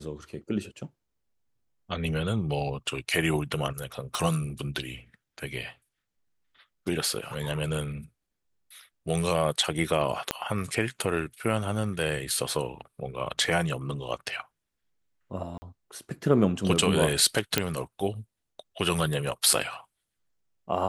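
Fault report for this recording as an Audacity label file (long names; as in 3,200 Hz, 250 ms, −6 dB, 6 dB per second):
4.150000	4.150000	click
10.310000	10.310000	click −10 dBFS
15.580000	15.620000	drop-out 40 ms
17.580000	17.580000	click −5 dBFS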